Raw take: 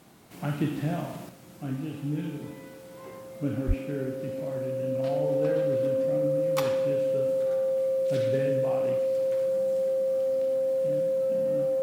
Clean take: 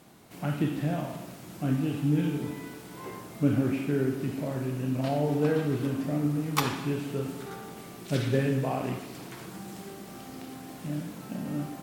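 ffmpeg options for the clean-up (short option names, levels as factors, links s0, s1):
-filter_complex "[0:a]bandreject=f=530:w=30,asplit=3[s0][s1][s2];[s0]afade=t=out:st=3.67:d=0.02[s3];[s1]highpass=f=140:w=0.5412,highpass=f=140:w=1.3066,afade=t=in:st=3.67:d=0.02,afade=t=out:st=3.79:d=0.02[s4];[s2]afade=t=in:st=3.79:d=0.02[s5];[s3][s4][s5]amix=inputs=3:normalize=0,asetnsamples=n=441:p=0,asendcmd='1.29 volume volume 5.5dB',volume=1"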